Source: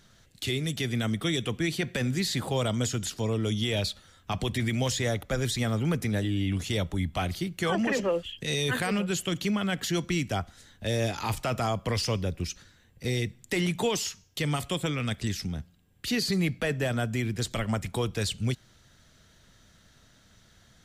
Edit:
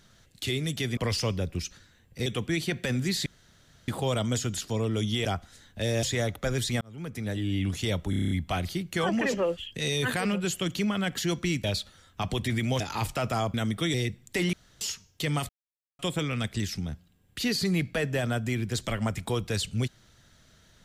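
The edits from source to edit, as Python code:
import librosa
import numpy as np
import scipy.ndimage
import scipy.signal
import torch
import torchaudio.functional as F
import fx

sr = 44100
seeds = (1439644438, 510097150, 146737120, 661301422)

y = fx.edit(x, sr, fx.swap(start_s=0.97, length_s=0.4, other_s=11.82, other_length_s=1.29),
    fx.insert_room_tone(at_s=2.37, length_s=0.62),
    fx.swap(start_s=3.74, length_s=1.16, other_s=10.3, other_length_s=0.78),
    fx.fade_in_span(start_s=5.68, length_s=0.75),
    fx.stutter(start_s=6.97, slice_s=0.03, count=8),
    fx.room_tone_fill(start_s=13.7, length_s=0.28),
    fx.insert_silence(at_s=14.66, length_s=0.5), tone=tone)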